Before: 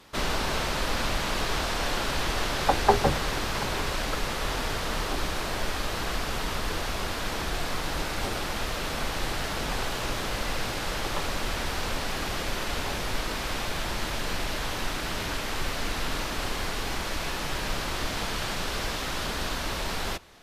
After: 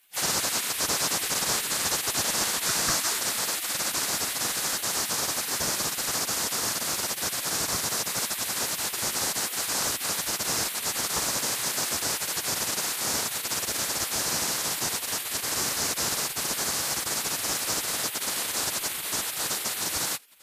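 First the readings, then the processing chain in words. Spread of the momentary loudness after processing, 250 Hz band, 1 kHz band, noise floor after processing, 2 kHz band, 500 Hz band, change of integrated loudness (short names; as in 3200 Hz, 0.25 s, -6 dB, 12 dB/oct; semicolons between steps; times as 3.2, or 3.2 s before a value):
3 LU, -4.0 dB, -3.5 dB, -35 dBFS, -1.0 dB, -4.5 dB, +4.0 dB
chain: resonant high shelf 4500 Hz +11.5 dB, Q 1.5; spectral gate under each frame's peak -15 dB weak; gain +2 dB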